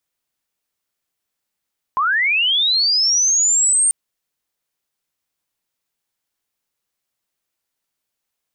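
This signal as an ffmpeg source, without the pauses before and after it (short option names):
-f lavfi -i "aevalsrc='pow(10,(-14.5+2.5*t/1.94)/20)*sin(2*PI*(1000*t+7800*t*t/(2*1.94)))':d=1.94:s=44100"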